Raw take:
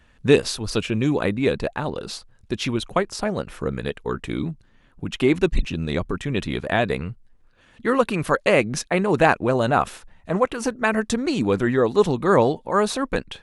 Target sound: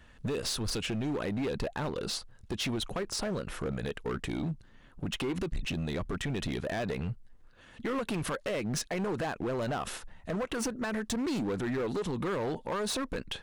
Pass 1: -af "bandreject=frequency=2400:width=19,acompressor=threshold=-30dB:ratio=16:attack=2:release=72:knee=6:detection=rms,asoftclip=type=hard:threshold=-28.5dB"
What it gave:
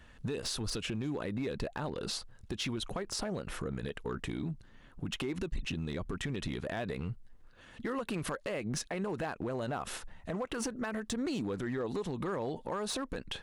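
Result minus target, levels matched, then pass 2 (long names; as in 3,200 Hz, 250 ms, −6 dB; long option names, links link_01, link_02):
downward compressor: peak gain reduction +5.5 dB
-af "bandreject=frequency=2400:width=19,acompressor=threshold=-24dB:ratio=16:attack=2:release=72:knee=6:detection=rms,asoftclip=type=hard:threshold=-28.5dB"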